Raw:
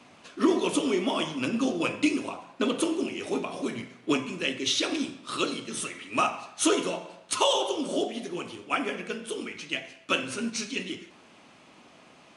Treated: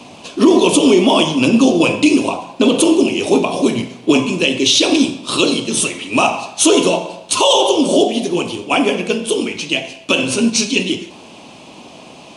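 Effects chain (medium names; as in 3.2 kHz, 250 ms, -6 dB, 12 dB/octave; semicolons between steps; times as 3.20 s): high-order bell 1.6 kHz -11 dB 1 oct; loudness maximiser +18 dB; trim -1 dB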